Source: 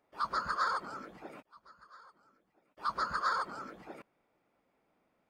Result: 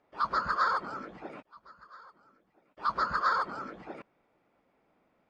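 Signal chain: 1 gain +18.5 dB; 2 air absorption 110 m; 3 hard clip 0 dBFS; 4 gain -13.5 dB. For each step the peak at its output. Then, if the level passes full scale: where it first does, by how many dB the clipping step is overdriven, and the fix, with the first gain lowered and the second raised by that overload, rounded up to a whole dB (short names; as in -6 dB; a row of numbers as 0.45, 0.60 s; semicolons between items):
-3.0, -4.0, -4.0, -17.5 dBFS; no overload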